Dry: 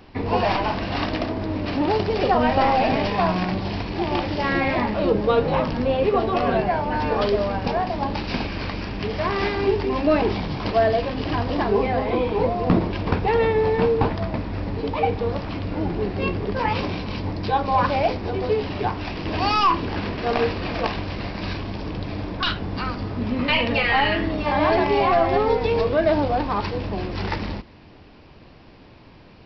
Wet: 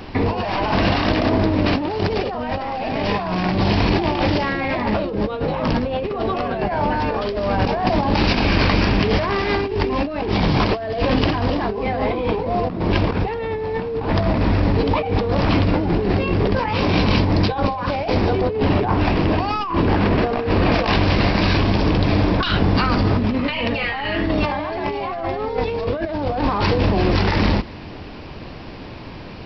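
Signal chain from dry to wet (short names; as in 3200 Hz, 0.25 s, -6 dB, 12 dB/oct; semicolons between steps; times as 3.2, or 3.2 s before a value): 18.41–20.72 high shelf 2500 Hz -10.5 dB; negative-ratio compressor -28 dBFS, ratio -1; gain +8 dB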